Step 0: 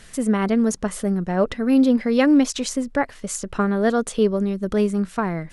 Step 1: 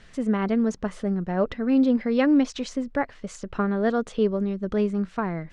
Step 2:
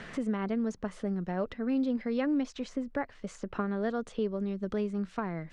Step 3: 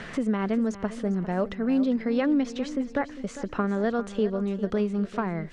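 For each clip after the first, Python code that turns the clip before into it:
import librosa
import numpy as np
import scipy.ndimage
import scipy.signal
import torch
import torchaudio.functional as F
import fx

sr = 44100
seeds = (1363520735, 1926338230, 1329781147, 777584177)

y1 = fx.air_absorb(x, sr, metres=130.0)
y1 = y1 * librosa.db_to_amplitude(-3.5)
y2 = fx.band_squash(y1, sr, depth_pct=70)
y2 = y2 * librosa.db_to_amplitude(-8.5)
y3 = fx.echo_feedback(y2, sr, ms=401, feedback_pct=43, wet_db=-14.0)
y3 = y3 * librosa.db_to_amplitude(5.5)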